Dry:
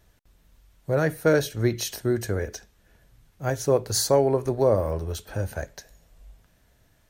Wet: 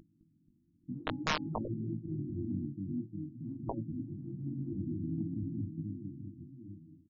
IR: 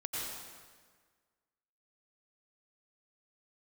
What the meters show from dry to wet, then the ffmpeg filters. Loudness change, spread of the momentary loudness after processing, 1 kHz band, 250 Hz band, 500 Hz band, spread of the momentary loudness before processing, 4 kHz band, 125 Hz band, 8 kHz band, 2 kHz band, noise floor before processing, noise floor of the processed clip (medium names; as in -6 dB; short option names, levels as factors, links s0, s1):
-14.0 dB, 13 LU, -10.5 dB, -6.0 dB, -23.5 dB, 13 LU, -11.5 dB, -9.0 dB, under -20 dB, -11.0 dB, -62 dBFS, -71 dBFS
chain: -filter_complex "[0:a]highpass=f=140:w=0.5412,highpass=f=140:w=1.3066,aeval=exprs='val(0)+0.0251*sin(2*PI*690*n/s)':c=same,afftfilt=real='re*(1-between(b*sr/4096,350,11000))':imag='im*(1-between(b*sr/4096,350,11000))':win_size=4096:overlap=0.75,firequalizer=gain_entry='entry(310,0);entry(730,-20);entry(2800,-29)':delay=0.05:min_phase=1,asplit=2[s0][s1];[s1]aecho=0:1:210|483|837.9|1299|1899:0.631|0.398|0.251|0.158|0.1[s2];[s0][s2]amix=inputs=2:normalize=0,aeval=exprs='(mod(9.44*val(0)+1,2)-1)/9.44':c=same,afftfilt=real='re*lt(hypot(re,im),0.178)':imag='im*lt(hypot(re,im),0.178)':win_size=1024:overlap=0.75,flanger=delay=18:depth=3.1:speed=0.54,aeval=exprs='0.15*sin(PI/2*1.78*val(0)/0.15)':c=same,bandreject=f=277.1:t=h:w=4,bandreject=f=554.2:t=h:w=4,bandreject=f=831.3:t=h:w=4,afftfilt=real='re*lt(b*sr/1024,460*pow(7300/460,0.5+0.5*sin(2*PI*0.94*pts/sr)))':imag='im*lt(b*sr/1024,460*pow(7300/460,0.5+0.5*sin(2*PI*0.94*pts/sr)))':win_size=1024:overlap=0.75,volume=0.631"